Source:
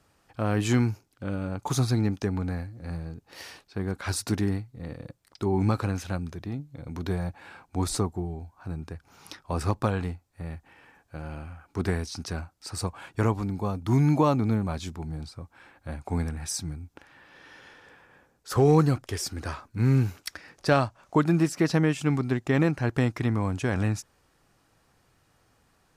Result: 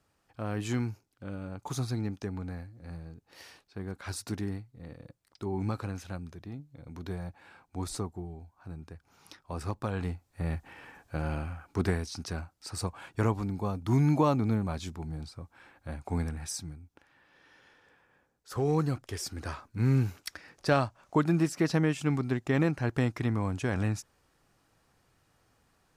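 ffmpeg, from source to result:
ffmpeg -i in.wav -af "volume=11.5dB,afade=type=in:start_time=9.87:duration=0.67:silence=0.223872,afade=type=out:start_time=11.3:duration=0.69:silence=0.398107,afade=type=out:start_time=16.34:duration=0.48:silence=0.446684,afade=type=in:start_time=18.51:duration=1.01:silence=0.473151" out.wav

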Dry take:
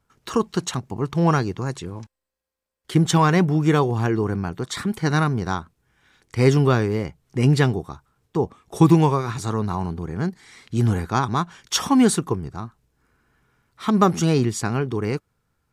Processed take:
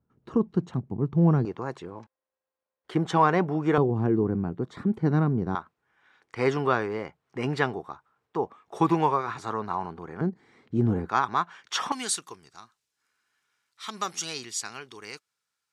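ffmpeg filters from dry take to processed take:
ffmpeg -i in.wav -af "asetnsamples=nb_out_samples=441:pad=0,asendcmd='1.45 bandpass f 760;3.78 bandpass f 260;5.55 bandpass f 1100;10.21 bandpass f 330;11.09 bandpass f 1400;11.92 bandpass f 5300',bandpass=frequency=190:width_type=q:width=0.75:csg=0" out.wav

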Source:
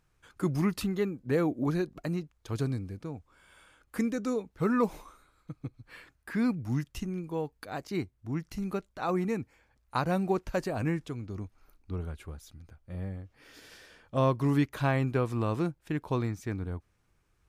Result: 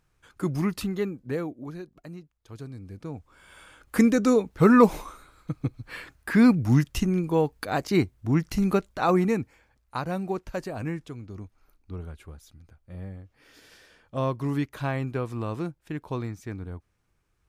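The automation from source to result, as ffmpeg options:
ffmpeg -i in.wav -af "volume=21dB,afade=type=out:start_time=1.12:duration=0.45:silence=0.298538,afade=type=in:start_time=2.73:duration=0.42:silence=0.237137,afade=type=in:start_time=3.15:duration=0.9:silence=0.446684,afade=type=out:start_time=8.7:duration=1.27:silence=0.251189" out.wav

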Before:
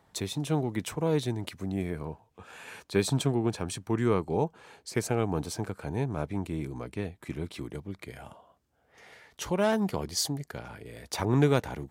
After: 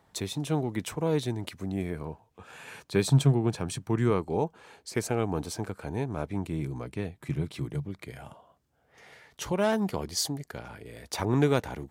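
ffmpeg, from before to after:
ffmpeg -i in.wav -af "asetnsamples=nb_out_samples=441:pad=0,asendcmd='2.46 equalizer g 9;4.1 equalizer g -3;6.33 equalizer g 5.5;7.17 equalizer g 12.5;7.89 equalizer g 5;9.52 equalizer g -2',equalizer=frequency=140:width_type=o:width=0.4:gain=-0.5" out.wav

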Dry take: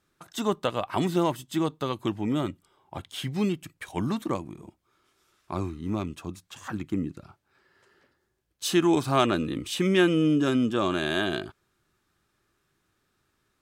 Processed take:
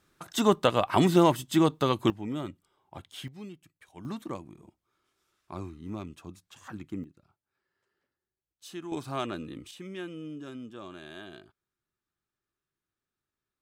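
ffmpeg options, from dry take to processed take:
ffmpeg -i in.wav -af "asetnsamples=nb_out_samples=441:pad=0,asendcmd='2.1 volume volume -7dB;3.28 volume volume -17dB;4.05 volume volume -8dB;7.04 volume volume -18dB;8.92 volume volume -10.5dB;9.71 volume volume -18dB',volume=4dB" out.wav

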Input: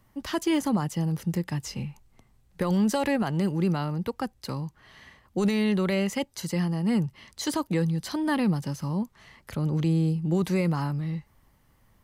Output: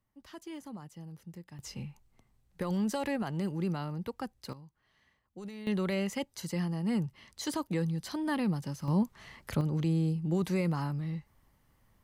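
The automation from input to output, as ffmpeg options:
ffmpeg -i in.wav -af "asetnsamples=nb_out_samples=441:pad=0,asendcmd='1.59 volume volume -7.5dB;4.53 volume volume -19dB;5.67 volume volume -6dB;8.88 volume volume 1dB;9.61 volume volume -5dB',volume=-19dB" out.wav

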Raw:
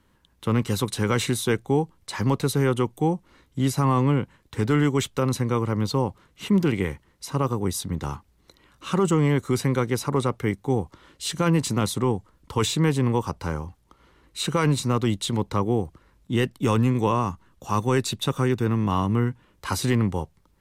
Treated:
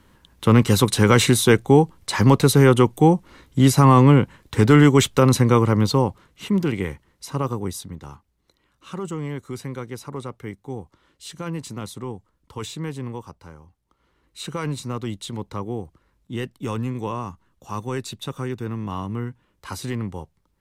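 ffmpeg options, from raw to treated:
ffmpeg -i in.wav -af "volume=18dB,afade=type=out:start_time=5.51:duration=0.96:silence=0.375837,afade=type=out:start_time=7.53:duration=0.46:silence=0.375837,afade=type=out:start_time=13.04:duration=0.53:silence=0.446684,afade=type=in:start_time=13.57:duration=0.88:silence=0.316228" out.wav

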